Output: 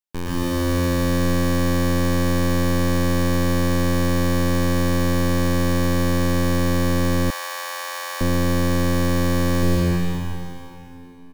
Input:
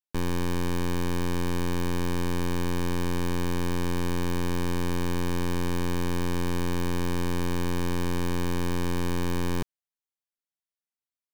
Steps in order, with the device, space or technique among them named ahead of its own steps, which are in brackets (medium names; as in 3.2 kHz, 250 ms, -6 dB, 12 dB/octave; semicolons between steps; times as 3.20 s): cave (delay 373 ms -12.5 dB; reverberation RT60 3.2 s, pre-delay 107 ms, DRR -8.5 dB); 7.30–8.21 s: inverse Chebyshev high-pass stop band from 210 Hz, stop band 60 dB